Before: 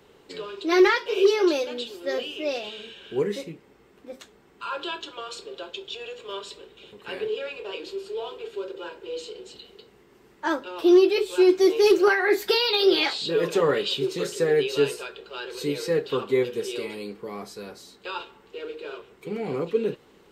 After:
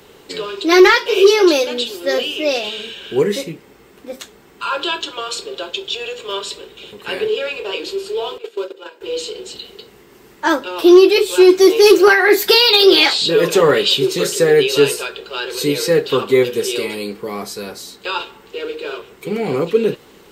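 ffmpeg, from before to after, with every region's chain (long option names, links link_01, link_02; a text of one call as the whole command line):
ffmpeg -i in.wav -filter_complex "[0:a]asettb=1/sr,asplit=3[link_01][link_02][link_03];[link_01]atrim=end=8.384[link_04];[link_02]atrim=start=8.38:end=9.01,asetpts=PTS-STARTPTS,afade=type=in:duration=0.004:curve=qsin,afade=type=out:start_time=0.626:duration=0.004:curve=qsin,agate=range=-12dB:threshold=-35dB:ratio=16:release=100:detection=peak,highpass=260[link_05];[link_03]atrim=start=9.006[link_06];[link_04][link_05]acrossfade=duration=0.004:curve1=hsin:curve2=qsin[link_07];[link_07][link_06]acrossfade=duration=0.004:curve1=qsin:curve2=hsin,lowpass=frequency=3800:poles=1,aemphasis=mode=production:type=75fm,acontrast=80,volume=3.5dB" out.wav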